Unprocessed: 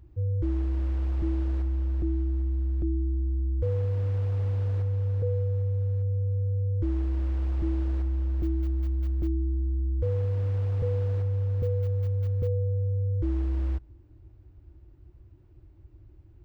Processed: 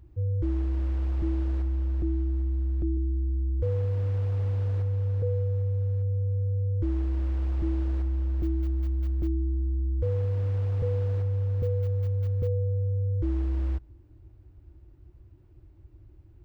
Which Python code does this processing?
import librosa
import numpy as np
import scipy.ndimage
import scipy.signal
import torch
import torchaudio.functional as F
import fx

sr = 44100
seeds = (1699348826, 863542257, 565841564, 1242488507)

y = fx.band_shelf(x, sr, hz=740.0, db=-11.5, octaves=1.7, at=(2.97, 3.6))